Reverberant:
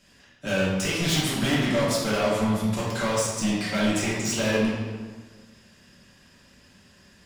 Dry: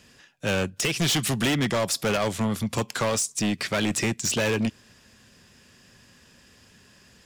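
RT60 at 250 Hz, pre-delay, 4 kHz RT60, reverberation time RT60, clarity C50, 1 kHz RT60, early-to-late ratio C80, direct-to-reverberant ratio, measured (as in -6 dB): 1.6 s, 3 ms, 1.0 s, 1.5 s, -0.5 dB, 1.5 s, 2.5 dB, -7.5 dB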